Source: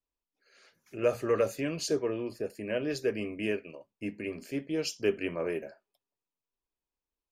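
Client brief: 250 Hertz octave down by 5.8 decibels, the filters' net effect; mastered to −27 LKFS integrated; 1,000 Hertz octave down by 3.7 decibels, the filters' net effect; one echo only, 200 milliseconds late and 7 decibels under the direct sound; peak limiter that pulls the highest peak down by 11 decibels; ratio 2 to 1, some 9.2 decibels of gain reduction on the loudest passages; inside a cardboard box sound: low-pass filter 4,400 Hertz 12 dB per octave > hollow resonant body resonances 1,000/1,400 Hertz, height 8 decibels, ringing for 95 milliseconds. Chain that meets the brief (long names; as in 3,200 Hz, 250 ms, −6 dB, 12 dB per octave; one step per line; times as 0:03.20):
parametric band 250 Hz −8 dB
parametric band 1,000 Hz −4.5 dB
downward compressor 2 to 1, threshold −41 dBFS
brickwall limiter −37 dBFS
low-pass filter 4,400 Hz 12 dB per octave
single-tap delay 200 ms −7 dB
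hollow resonant body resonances 1,000/1,400 Hz, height 8 dB, ringing for 95 ms
level +20 dB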